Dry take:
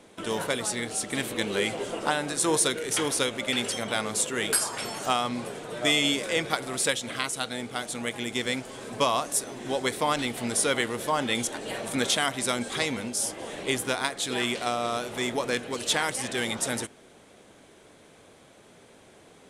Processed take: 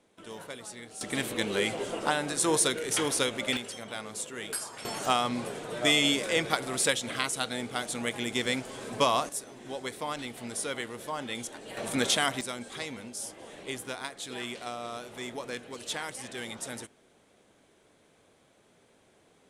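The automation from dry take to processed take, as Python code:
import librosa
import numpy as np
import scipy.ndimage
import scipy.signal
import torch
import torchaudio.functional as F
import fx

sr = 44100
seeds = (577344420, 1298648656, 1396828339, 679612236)

y = fx.gain(x, sr, db=fx.steps((0.0, -13.5), (1.01, -1.5), (3.57, -10.0), (4.85, -0.5), (9.29, -9.0), (11.77, -1.0), (12.41, -9.5)))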